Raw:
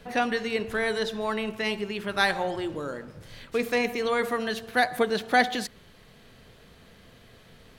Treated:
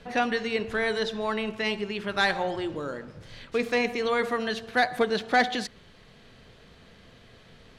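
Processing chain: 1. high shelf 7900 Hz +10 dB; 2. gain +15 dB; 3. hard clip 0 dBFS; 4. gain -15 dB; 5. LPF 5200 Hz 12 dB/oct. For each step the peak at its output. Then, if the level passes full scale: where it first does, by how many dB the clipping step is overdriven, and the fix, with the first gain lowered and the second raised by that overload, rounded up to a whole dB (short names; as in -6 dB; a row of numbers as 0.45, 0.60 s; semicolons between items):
-7.5, +7.5, 0.0, -15.0, -14.0 dBFS; step 2, 7.5 dB; step 2 +7 dB, step 4 -7 dB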